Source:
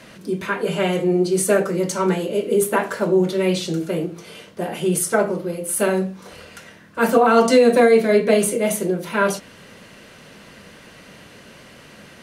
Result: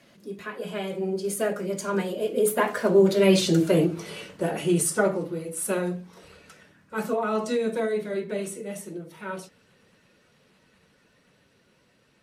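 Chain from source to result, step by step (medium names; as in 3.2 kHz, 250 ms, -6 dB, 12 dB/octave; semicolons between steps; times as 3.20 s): coarse spectral quantiser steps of 15 dB; Doppler pass-by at 3.71 s, 20 m/s, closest 12 m; trim +3.5 dB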